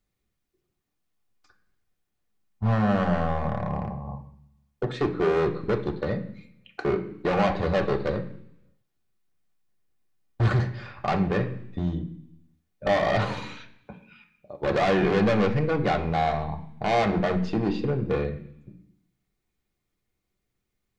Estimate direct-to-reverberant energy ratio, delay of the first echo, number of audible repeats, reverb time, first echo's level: 2.0 dB, none, none, 0.70 s, none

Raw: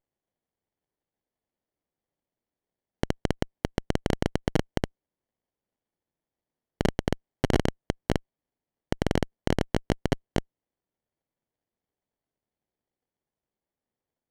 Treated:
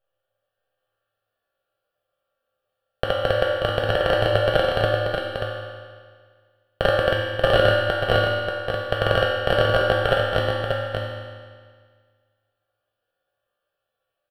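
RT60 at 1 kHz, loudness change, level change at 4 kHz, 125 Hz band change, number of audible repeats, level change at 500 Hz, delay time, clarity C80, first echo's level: 1.8 s, +8.5 dB, +13.0 dB, +5.0 dB, 1, +13.0 dB, 0.585 s, -1.0 dB, -5.5 dB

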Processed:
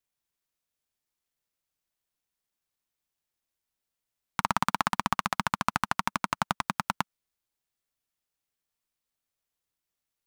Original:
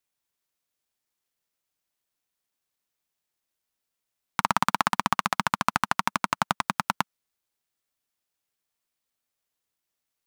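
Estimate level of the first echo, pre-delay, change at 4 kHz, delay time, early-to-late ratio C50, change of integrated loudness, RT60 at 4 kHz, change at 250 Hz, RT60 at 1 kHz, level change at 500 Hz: none, none, -3.5 dB, none, none, -3.5 dB, none, -2.0 dB, none, -3.0 dB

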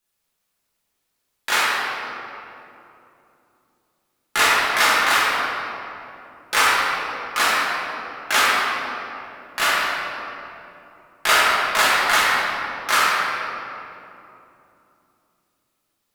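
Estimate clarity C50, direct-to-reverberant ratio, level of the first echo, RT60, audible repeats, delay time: -3.5 dB, -8.5 dB, none, 2.9 s, none, none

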